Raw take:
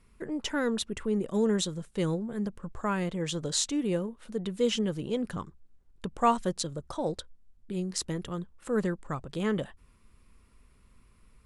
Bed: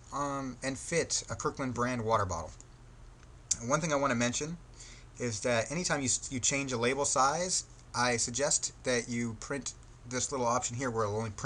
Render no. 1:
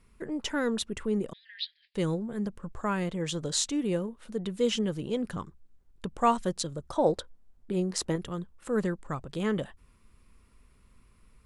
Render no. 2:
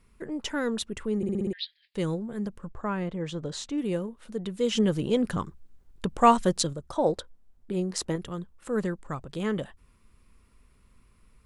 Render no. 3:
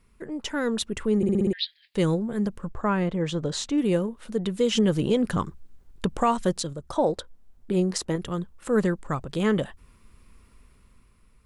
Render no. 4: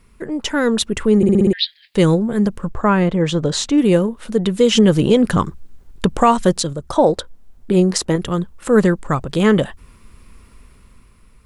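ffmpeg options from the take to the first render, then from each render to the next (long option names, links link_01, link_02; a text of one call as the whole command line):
ffmpeg -i in.wav -filter_complex "[0:a]asettb=1/sr,asplit=3[link_01][link_02][link_03];[link_01]atrim=end=1.334[link_04];[link_02]atrim=start=1.33:end=1.95,asetpts=PTS-STARTPTS,afade=type=in:duration=0.004:curve=qsin,afade=type=out:start_time=0.616:duration=0.004:curve=qsin,asuperpass=centerf=2900:order=20:qfactor=0.92[link_05];[link_03]atrim=start=1.946[link_06];[link_04][link_05]acrossfade=duration=0.004:curve1=hsin:curve2=qsin[link_07];[link_07][link_06]acrossfade=duration=0.004:curve1=qsin:curve2=hsin,asettb=1/sr,asplit=3[link_08][link_09][link_10];[link_08]atrim=end=6.964[link_11];[link_09]atrim=start=6.96:end=8.16,asetpts=PTS-STARTPTS,afade=type=in:duration=0.004:curve=qsin,afade=type=out:start_time=1.196:duration=0.004:curve=qsin,equalizer=frequency=660:width=0.45:gain=8[link_12];[link_10]atrim=start=8.156[link_13];[link_11][link_12]acrossfade=duration=0.004:curve1=hsin:curve2=qsin[link_14];[link_14][link_13]acrossfade=duration=0.004:curve1=qsin:curve2=hsin" out.wav
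ffmpeg -i in.wav -filter_complex "[0:a]asettb=1/sr,asplit=3[link_01][link_02][link_03];[link_01]atrim=end=2.694[link_04];[link_02]atrim=start=2.69:end=3.78,asetpts=PTS-STARTPTS,afade=type=in:duration=0.004:curve=qsin,afade=type=out:start_time=1.086:duration=0.004:curve=qsin,lowpass=frequency=1900:poles=1[link_05];[link_03]atrim=start=3.776[link_06];[link_04][link_05]acrossfade=duration=0.004:curve1=hsin:curve2=qsin[link_07];[link_07][link_06]acrossfade=duration=0.004:curve1=qsin:curve2=hsin,asplit=3[link_08][link_09][link_10];[link_08]afade=type=out:start_time=4.75:duration=0.02[link_11];[link_09]acontrast=54,afade=type=in:start_time=4.75:duration=0.02,afade=type=out:start_time=6.72:duration=0.02[link_12];[link_10]afade=type=in:start_time=6.72:duration=0.02[link_13];[link_11][link_12][link_13]amix=inputs=3:normalize=0,asplit=7[link_14][link_15][link_16][link_17][link_18][link_19][link_20];[link_14]atrim=end=1.232[link_21];[link_15]atrim=start=1.168:end=1.232[link_22];[link_16]atrim=start=1.168:end=1.232[link_23];[link_17]atrim=start=1.168:end=1.232[link_24];[link_18]atrim=start=1.168:end=1.232[link_25];[link_19]atrim=start=1.168:end=1.232[link_26];[link_20]atrim=start=1.528[link_27];[link_21][link_22]acrossfade=duration=0.004:curve1=hsin:curve2=hsin[link_28];[link_28][link_23]acrossfade=duration=0.004:curve1=hsin:curve2=hsin[link_29];[link_29][link_24]acrossfade=duration=0.004:curve1=hsin:curve2=hsin[link_30];[link_30][link_25]acrossfade=duration=0.004:curve1=hsin:curve2=hsin[link_31];[link_31][link_26]acrossfade=duration=0.004:curve1=hsin:curve2=hsin[link_32];[link_32][link_27]acrossfade=duration=0.004:curve1=hsin:curve2=hsin" out.wav
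ffmpeg -i in.wav -af "dynaudnorm=framelen=120:gausssize=13:maxgain=6dB,alimiter=limit=-12.5dB:level=0:latency=1:release=342" out.wav
ffmpeg -i in.wav -af "volume=9.5dB" out.wav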